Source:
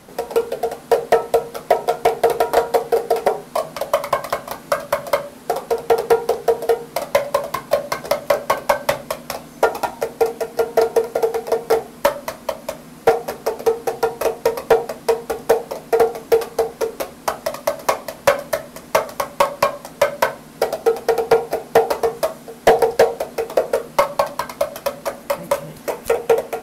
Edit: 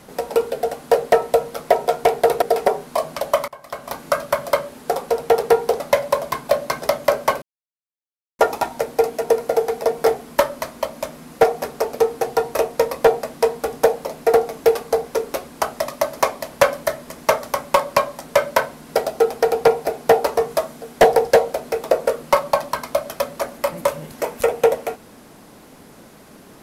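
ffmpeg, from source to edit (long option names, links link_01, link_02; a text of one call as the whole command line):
ffmpeg -i in.wav -filter_complex "[0:a]asplit=7[link_01][link_02][link_03][link_04][link_05][link_06][link_07];[link_01]atrim=end=2.422[link_08];[link_02]atrim=start=3.018:end=4.08,asetpts=PTS-STARTPTS,afade=type=out:start_time=1.058:duration=0.004:curve=hsin:silence=0.0841395[link_09];[link_03]atrim=start=4.08:end=6.402,asetpts=PTS-STARTPTS,afade=type=in:duration=0.45:curve=qua:silence=0.0841395[link_10];[link_04]atrim=start=7.018:end=8.64,asetpts=PTS-STARTPTS,afade=type=out:start_time=1.618:duration=0.004:curve=hsin[link_11];[link_05]atrim=start=8.64:end=9.61,asetpts=PTS-STARTPTS,volume=0[link_12];[link_06]atrim=start=9.61:end=10.462,asetpts=PTS-STARTPTS,afade=type=in:duration=0.004:curve=hsin[link_13];[link_07]atrim=start=10.898[link_14];[link_09][link_10]concat=n=2:v=0:a=1[link_15];[link_08][link_15]acrossfade=duration=0.004:curve1=hsin:curve2=hsin[link_16];[link_11][link_12][link_13]concat=n=3:v=0:a=1[link_17];[link_16][link_17]acrossfade=duration=0.004:curve1=hsin:curve2=hsin[link_18];[link_18][link_14]acrossfade=duration=0.004:curve1=hsin:curve2=hsin" out.wav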